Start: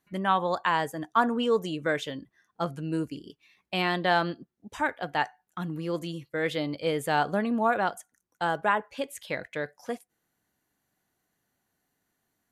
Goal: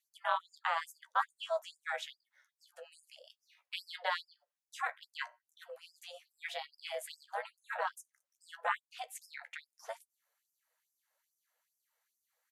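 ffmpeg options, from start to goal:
-filter_complex "[0:a]asplit=2[a][b];[b]acompressor=threshold=-39dB:ratio=6,volume=-0.5dB[c];[a][c]amix=inputs=2:normalize=0,afreqshift=28,aeval=exprs='val(0)*sin(2*PI*170*n/s)':c=same,asplit=2[d][e];[e]adelay=14,volume=-11.5dB[f];[d][f]amix=inputs=2:normalize=0,afftfilt=real='re*gte(b*sr/1024,460*pow(5000/460,0.5+0.5*sin(2*PI*2.4*pts/sr)))':imag='im*gte(b*sr/1024,460*pow(5000/460,0.5+0.5*sin(2*PI*2.4*pts/sr)))':win_size=1024:overlap=0.75,volume=-6dB"

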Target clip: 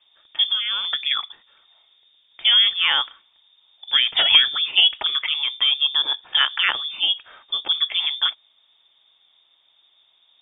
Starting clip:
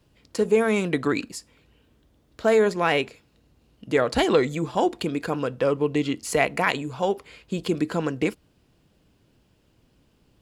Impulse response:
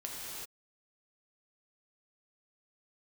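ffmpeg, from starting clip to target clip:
-filter_complex "[0:a]asettb=1/sr,asplit=3[a][b][c];[a]atrim=end=0.454[d];[b]atrim=start=0.45:end=1.11,asetpts=PTS-STARTPTS,afade=t=in:d=0.004:c=qsin,afade=t=out:st=0.656:d=0.004:c=qsin,acompressor=threshold=-23dB:ratio=5[e];[c]atrim=start=1.106[f];[d][e]acrossfade=d=0.004:c1=hsin:c2=qsin[g];[g][f]acrossfade=d=0.004:c1=qsin:c2=hsin,asettb=1/sr,asplit=3[h][i][j];[h]atrim=end=4.254[k];[i]atrim=start=4.25:end=5.29,asetpts=PTS-STARTPTS,afade=t=in:d=0.004:c=qsin,afade=t=out:st=1.036:d=0.004:c=qsin,equalizer=f=1.2k:t=o:w=2.2:g=6.5[l];[j]atrim=start=5.286[m];[k][l]acrossfade=d=0.004:c1=hsin:c2=qsin[n];[n][m]acrossfade=d=0.004:c1=qsin:c2=hsin,lowpass=f=3.1k:t=q:w=0.5098,lowpass=f=3.1k:t=q:w=0.6013,lowpass=f=3.1k:t=q:w=0.9,lowpass=f=3.1k:t=q:w=2.563,afreqshift=-3700,volume=2.5dB"

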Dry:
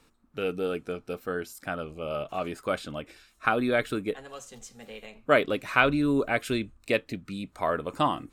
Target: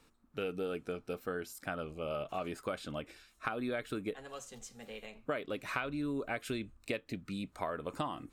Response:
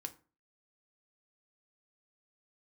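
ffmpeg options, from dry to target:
-af "acompressor=threshold=-29dB:ratio=12,volume=-3.5dB"

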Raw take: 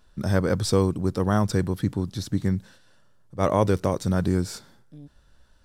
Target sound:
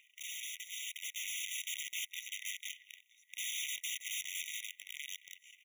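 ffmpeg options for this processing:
-filter_complex "[0:a]afftfilt=real='re*lt(hypot(re,im),0.0794)':imag='im*lt(hypot(re,im),0.0794)':win_size=1024:overlap=0.75,asplit=2[a][b];[b]aecho=0:1:961|1922:0.112|0.0168[c];[a][c]amix=inputs=2:normalize=0,aeval=exprs='(tanh(158*val(0)+0.25)-tanh(0.25))/158':c=same,firequalizer=gain_entry='entry(160,0);entry(470,-2);entry(970,15);entry(1500,13);entry(2700,-14)':delay=0.05:min_phase=1,asplit=2[d][e];[e]acompressor=threshold=-58dB:ratio=16,volume=2.5dB[f];[d][f]amix=inputs=2:normalize=0,aeval=exprs='(mod(84.1*val(0)+1,2)-1)/84.1':c=same,acrusher=bits=7:mode=log:mix=0:aa=0.000001,aeval=exprs='0.0119*(cos(1*acos(clip(val(0)/0.0119,-1,1)))-cos(1*PI/2))+0.0015*(cos(4*acos(clip(val(0)/0.0119,-1,1)))-cos(4*PI/2))+0.000299*(cos(7*acos(clip(val(0)/0.0119,-1,1)))-cos(7*PI/2))':c=same,dynaudnorm=f=250:g=9:m=5dB,afftfilt=real='re*eq(mod(floor(b*sr/1024/1900),2),1)':imag='im*eq(mod(floor(b*sr/1024/1900),2),1)':win_size=1024:overlap=0.75,volume=3dB"

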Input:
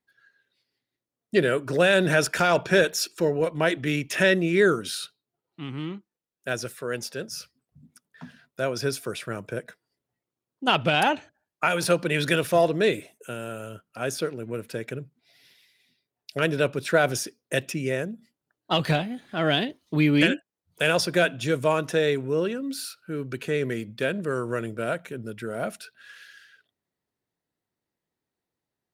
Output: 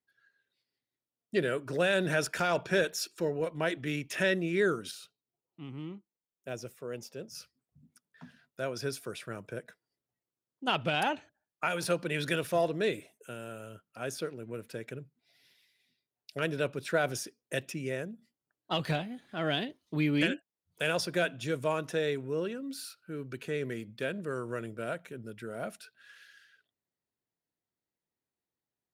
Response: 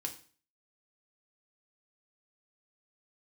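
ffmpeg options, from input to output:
-filter_complex "[0:a]asettb=1/sr,asplit=3[a][b][c];[a]atrim=end=4.914[d];[b]atrim=start=4.91:end=7.35,asetpts=PTS-STARTPTS,afade=t=in:d=0.004:c=qsin,afade=t=out:st=2.436:d=0.004:c=qsin,equalizer=f=1.6k:t=o:w=0.67:g=-10,equalizer=f=4k:t=o:w=0.67:g=-8,equalizer=f=10k:t=o:w=0.67:g=-8[e];[c]atrim=start=7.346[f];[d][e]acrossfade=d=0.004:c1=hsin:c2=qsin[g];[g][f]acrossfade=d=0.004:c1=qsin:c2=hsin,volume=-8dB"

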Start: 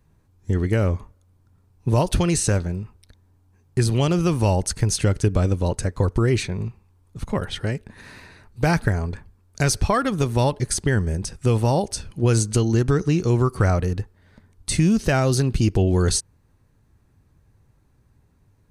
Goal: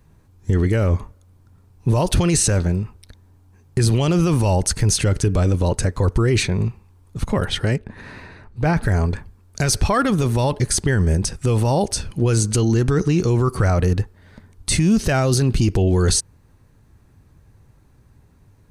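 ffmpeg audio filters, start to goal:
-filter_complex "[0:a]asettb=1/sr,asplit=3[a][b][c];[a]atrim=end=7.764[d];[b]atrim=start=7.76:end=8.83,asetpts=PTS-STARTPTS,afade=t=in:d=0.004:c=qsin,afade=t=out:st=1.066:d=0.004:c=qsin,lowpass=f=1.9k:p=1[e];[c]atrim=start=8.826[f];[d][e]acrossfade=d=0.004:c1=hsin:c2=qsin[g];[g][f]acrossfade=d=0.004:c1=qsin:c2=hsin,alimiter=limit=-16dB:level=0:latency=1:release=12,volume=7dB"

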